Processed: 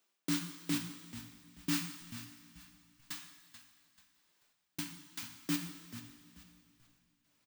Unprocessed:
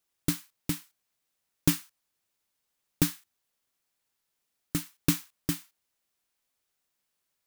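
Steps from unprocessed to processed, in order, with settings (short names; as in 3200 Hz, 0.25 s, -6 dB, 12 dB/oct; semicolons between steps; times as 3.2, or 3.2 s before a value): steep high-pass 170 Hz; bell 13000 Hz -11.5 dB 0.89 oct; reverse; compressor 10:1, threshold -39 dBFS, peak gain reduction 20 dB; reverse; step gate "xxx..x.." 116 bpm -60 dB; frequency-shifting echo 0.436 s, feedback 32%, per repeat -55 Hz, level -13 dB; on a send at -3.5 dB: reverb, pre-delay 3 ms; on the sum: gain +6.5 dB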